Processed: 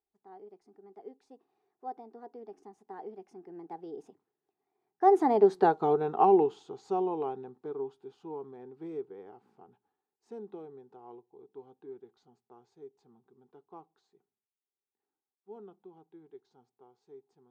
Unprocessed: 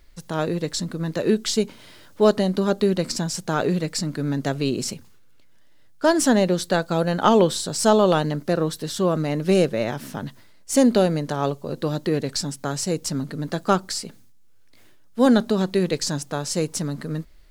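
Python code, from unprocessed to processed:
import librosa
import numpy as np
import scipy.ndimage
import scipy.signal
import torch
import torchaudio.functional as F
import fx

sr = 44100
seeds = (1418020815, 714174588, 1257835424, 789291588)

y = fx.doppler_pass(x, sr, speed_mps=58, closest_m=16.0, pass_at_s=5.64)
y = fx.double_bandpass(y, sr, hz=570.0, octaves=0.96)
y = y * librosa.db_to_amplitude(8.0)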